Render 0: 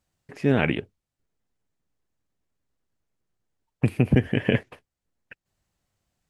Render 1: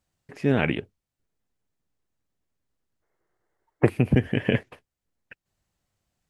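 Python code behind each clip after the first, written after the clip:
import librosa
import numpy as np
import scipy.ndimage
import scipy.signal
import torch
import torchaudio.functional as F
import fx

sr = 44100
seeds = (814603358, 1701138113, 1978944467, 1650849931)

y = fx.spec_box(x, sr, start_s=3.03, length_s=0.87, low_hz=310.0, high_hz=2200.0, gain_db=12)
y = y * 10.0 ** (-1.0 / 20.0)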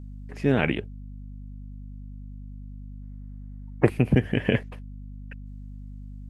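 y = fx.add_hum(x, sr, base_hz=50, snr_db=10)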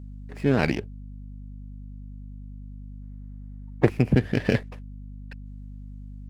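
y = fx.running_max(x, sr, window=5)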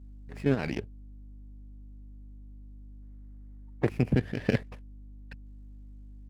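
y = fx.level_steps(x, sr, step_db=10)
y = y * 10.0 ** (-2.0 / 20.0)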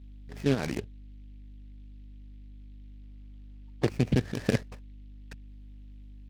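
y = fx.noise_mod_delay(x, sr, seeds[0], noise_hz=2700.0, depth_ms=0.051)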